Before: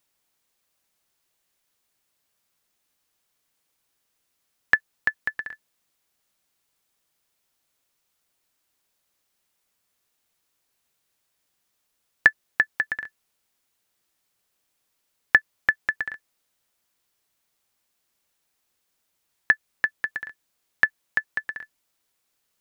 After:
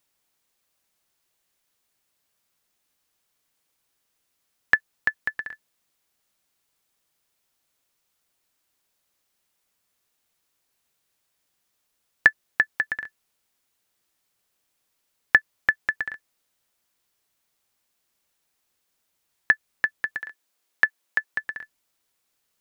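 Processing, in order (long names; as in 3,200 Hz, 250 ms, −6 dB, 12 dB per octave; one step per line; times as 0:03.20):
0:20.20–0:21.34: high-pass filter 260 Hz 12 dB per octave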